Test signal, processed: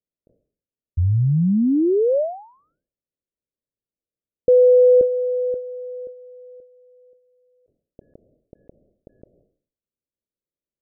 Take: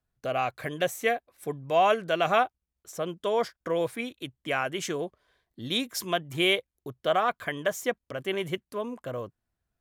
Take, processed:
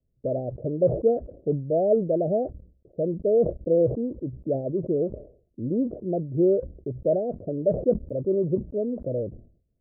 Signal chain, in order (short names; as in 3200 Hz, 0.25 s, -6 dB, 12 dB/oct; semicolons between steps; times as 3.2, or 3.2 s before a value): steep low-pass 610 Hz 72 dB/oct; sustainer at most 110 dB/s; gain +7.5 dB